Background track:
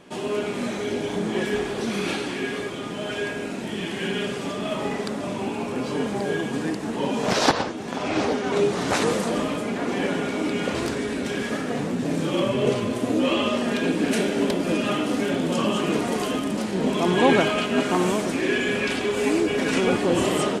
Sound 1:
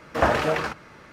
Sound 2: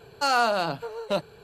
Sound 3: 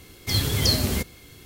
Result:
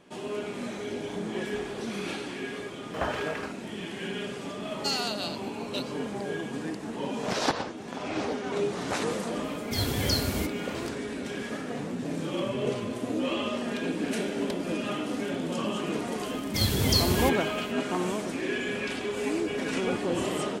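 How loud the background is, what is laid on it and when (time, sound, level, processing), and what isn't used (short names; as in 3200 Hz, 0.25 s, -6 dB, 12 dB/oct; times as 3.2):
background track -7.5 dB
2.79 add 1 -10.5 dB
4.63 add 2 -12.5 dB + resonant high shelf 2300 Hz +11.5 dB, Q 1.5
9.44 add 3 -6.5 dB
16.27 add 3 -3 dB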